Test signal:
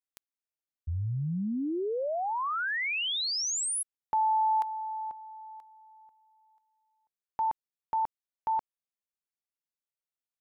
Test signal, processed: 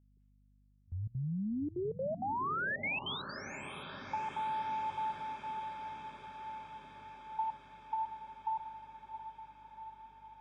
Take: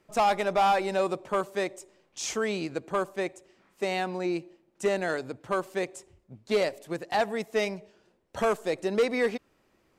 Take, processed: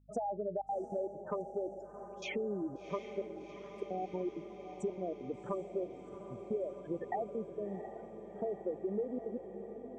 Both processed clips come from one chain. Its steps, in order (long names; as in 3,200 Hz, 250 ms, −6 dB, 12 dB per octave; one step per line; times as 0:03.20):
high-pass filter 130 Hz 12 dB per octave
treble cut that deepens with the level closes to 600 Hz, closed at −23.5 dBFS
noise gate with hold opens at −55 dBFS, hold 71 ms
gate on every frequency bin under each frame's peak −10 dB strong
high shelf with overshoot 3,600 Hz −9.5 dB, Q 1.5
downward compressor 6 to 1, threshold −35 dBFS
gate pattern ".xxxxxxx.xx.xx" 196 BPM −24 dB
mains hum 50 Hz, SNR 26 dB
feedback delay with all-pass diffusion 727 ms, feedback 72%, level −10.5 dB
level +1 dB